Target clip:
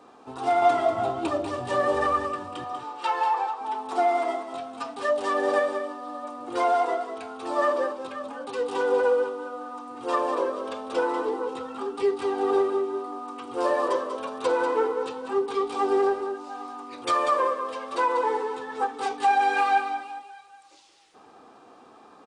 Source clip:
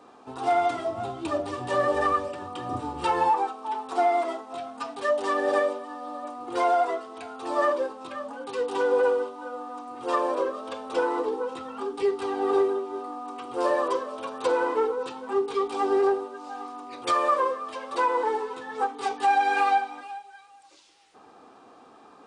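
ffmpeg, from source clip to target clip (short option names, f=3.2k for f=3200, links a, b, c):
-filter_complex "[0:a]asettb=1/sr,asplit=3[a][b][c];[a]atrim=end=0.624[d];[b]atrim=start=0.62:end=1.29,asetpts=PTS-STARTPTS,afade=t=in:d=0.004:c=qsin,afade=t=out:st=0.666:d=0.004:c=qsin,equalizer=f=870:w=0.36:g=5.5[e];[c]atrim=start=1.286[f];[d][e]acrossfade=d=0.004:c1=hsin:c2=qsin[g];[g][f]acrossfade=d=0.004:c1=qsin:c2=hsin,asettb=1/sr,asplit=3[h][i][j];[h]atrim=end=2.644[k];[i]atrim=start=2.64:end=3.61,asetpts=PTS-STARTPTS,afade=t=in:d=0.004:c=qsin,afade=t=out:st=0.966:d=0.004:c=qsin,highpass=670,lowpass=6.5k[l];[j]atrim=start=3.606[m];[k][l]acrossfade=d=0.004:c1=hsin:c2=qsin[n];[n][m]acrossfade=d=0.004:c1=qsin:c2=hsin,aecho=1:1:192:0.376"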